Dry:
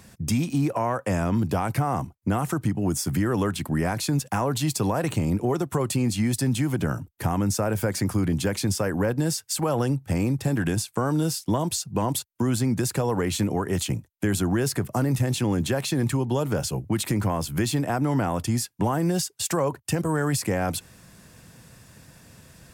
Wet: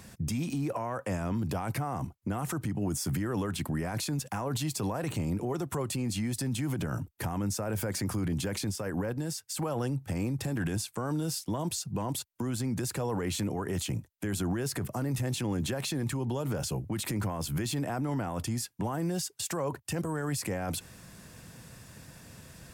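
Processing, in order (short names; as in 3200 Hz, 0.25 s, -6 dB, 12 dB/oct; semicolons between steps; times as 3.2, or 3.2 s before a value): limiter -24.5 dBFS, peak gain reduction 10.5 dB; 8.7–9.57 upward expander 1.5:1, over -43 dBFS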